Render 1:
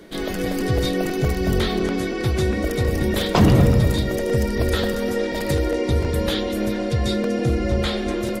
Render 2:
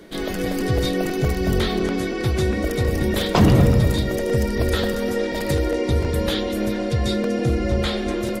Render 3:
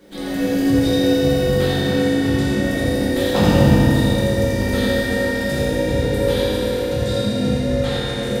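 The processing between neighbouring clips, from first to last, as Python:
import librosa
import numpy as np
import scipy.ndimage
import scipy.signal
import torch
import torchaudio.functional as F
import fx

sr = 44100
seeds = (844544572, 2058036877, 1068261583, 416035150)

y1 = x
y2 = fx.dmg_crackle(y1, sr, seeds[0], per_s=490.0, level_db=-45.0)
y2 = y2 + 10.0 ** (-3.5 / 20.0) * np.pad(y2, (int(84 * sr / 1000.0), 0))[:len(y2)]
y2 = fx.rev_fdn(y2, sr, rt60_s=3.3, lf_ratio=1.2, hf_ratio=0.85, size_ms=11.0, drr_db=-9.0)
y2 = F.gain(torch.from_numpy(y2), -8.0).numpy()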